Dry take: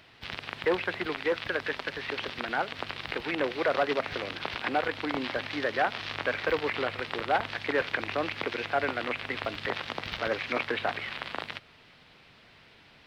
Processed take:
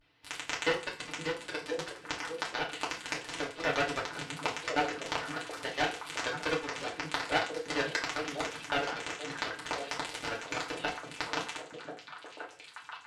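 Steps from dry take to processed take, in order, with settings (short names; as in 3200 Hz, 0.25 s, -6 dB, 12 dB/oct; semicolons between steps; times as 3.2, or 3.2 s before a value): in parallel at +1 dB: compressor, threshold -38 dBFS, peak gain reduction 16 dB; on the sum: vibrato 0.4 Hz 54 cents; added harmonics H 3 -9 dB, 4 -39 dB, 6 -32 dB, 8 -39 dB, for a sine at -11.5 dBFS; delay with a stepping band-pass 0.519 s, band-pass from 180 Hz, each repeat 1.4 oct, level -1 dB; FDN reverb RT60 0.38 s, low-frequency decay 0.8×, high-frequency decay 0.85×, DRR -4 dB; gain -1 dB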